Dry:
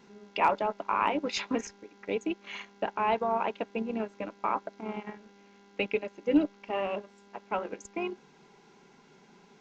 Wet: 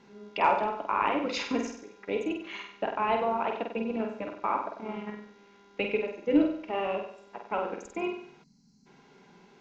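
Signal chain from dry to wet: air absorption 57 m; flutter echo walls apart 8.2 m, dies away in 0.59 s; spectral gain 8.43–8.87, 300–4000 Hz -25 dB

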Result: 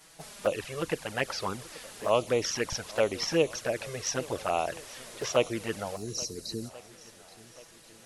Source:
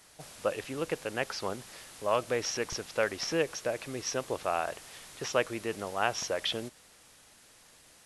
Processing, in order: envelope flanger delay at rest 6.8 ms, full sweep at -26 dBFS; spectral delete 5.96–6.7, 470–3800 Hz; swung echo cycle 1.383 s, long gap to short 1.5:1, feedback 40%, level -20.5 dB; gain +5.5 dB

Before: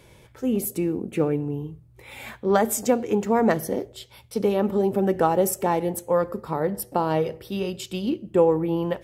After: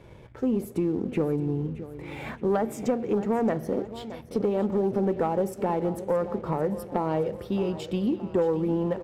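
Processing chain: compressor 2.5:1, threshold -30 dBFS, peak gain reduction 11.5 dB; LPF 1100 Hz 6 dB/oct; feedback echo 0.621 s, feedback 55%, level -15 dB; sample leveller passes 1; gain +2 dB

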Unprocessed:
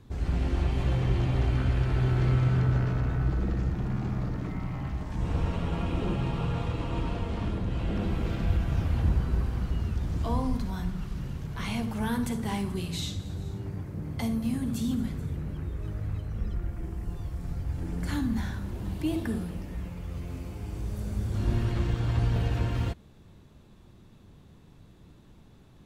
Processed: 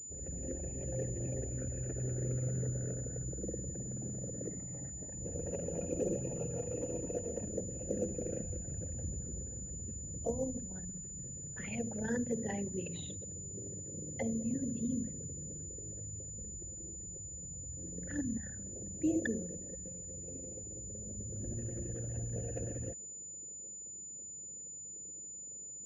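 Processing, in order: formant sharpening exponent 2; vowel filter e; pulse-width modulation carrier 7000 Hz; gain +16.5 dB

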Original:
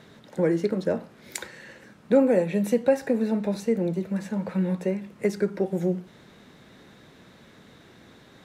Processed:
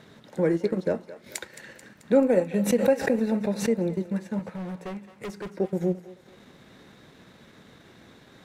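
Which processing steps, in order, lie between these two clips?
transient shaper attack -1 dB, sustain -8 dB; 4.39–5.49 overloaded stage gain 32 dB; on a send: thinning echo 0.218 s, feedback 60%, high-pass 650 Hz, level -13 dB; 2.61–3.75 on the sum: backwards sustainer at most 110 dB/s

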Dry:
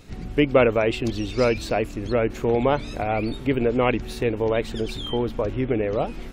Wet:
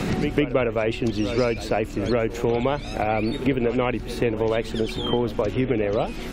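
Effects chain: pre-echo 0.151 s -16 dB; three-band squash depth 100%; gain -1.5 dB

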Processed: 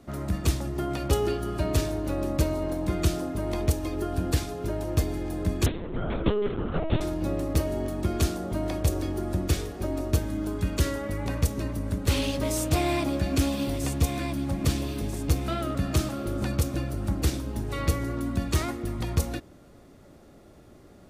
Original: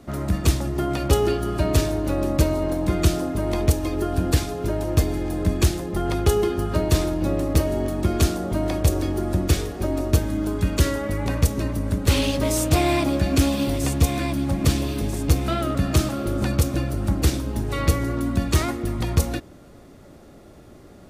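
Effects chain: 5.66–7.01 LPC vocoder at 8 kHz pitch kept; gain -5.5 dB

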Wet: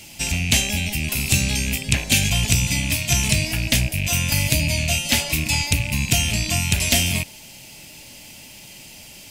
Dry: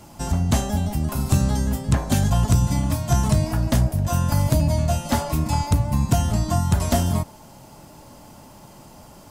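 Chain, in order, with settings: rattling part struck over -26 dBFS, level -30 dBFS; resonant high shelf 1700 Hz +12.5 dB, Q 3; gain -3 dB

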